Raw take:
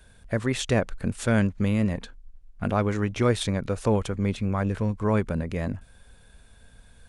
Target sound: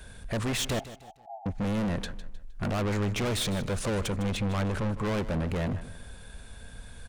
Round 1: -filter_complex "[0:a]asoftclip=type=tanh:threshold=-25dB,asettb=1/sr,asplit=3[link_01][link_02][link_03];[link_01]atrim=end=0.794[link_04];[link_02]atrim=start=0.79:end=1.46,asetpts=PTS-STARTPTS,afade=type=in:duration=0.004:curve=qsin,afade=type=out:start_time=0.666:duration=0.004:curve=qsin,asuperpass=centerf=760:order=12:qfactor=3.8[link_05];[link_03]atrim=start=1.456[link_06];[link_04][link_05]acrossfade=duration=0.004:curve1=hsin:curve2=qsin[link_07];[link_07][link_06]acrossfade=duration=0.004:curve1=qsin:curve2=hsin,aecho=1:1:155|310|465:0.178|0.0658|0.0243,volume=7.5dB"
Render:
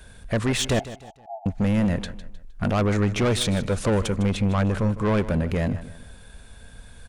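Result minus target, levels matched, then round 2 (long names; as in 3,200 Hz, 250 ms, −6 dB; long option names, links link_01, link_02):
soft clipping: distortion −5 dB
-filter_complex "[0:a]asoftclip=type=tanh:threshold=-34.5dB,asettb=1/sr,asplit=3[link_01][link_02][link_03];[link_01]atrim=end=0.794[link_04];[link_02]atrim=start=0.79:end=1.46,asetpts=PTS-STARTPTS,afade=type=in:duration=0.004:curve=qsin,afade=type=out:start_time=0.666:duration=0.004:curve=qsin,asuperpass=centerf=760:order=12:qfactor=3.8[link_05];[link_03]atrim=start=1.456[link_06];[link_04][link_05]acrossfade=duration=0.004:curve1=hsin:curve2=qsin[link_07];[link_07][link_06]acrossfade=duration=0.004:curve1=qsin:curve2=hsin,aecho=1:1:155|310|465:0.178|0.0658|0.0243,volume=7.5dB"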